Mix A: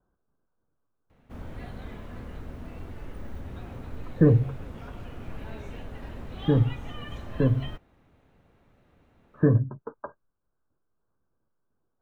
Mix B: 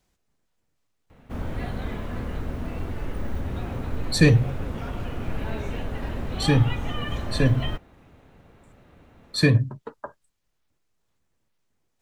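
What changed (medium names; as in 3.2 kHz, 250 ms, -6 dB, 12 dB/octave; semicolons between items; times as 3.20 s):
speech: remove rippled Chebyshev low-pass 1.6 kHz, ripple 3 dB; background +9.0 dB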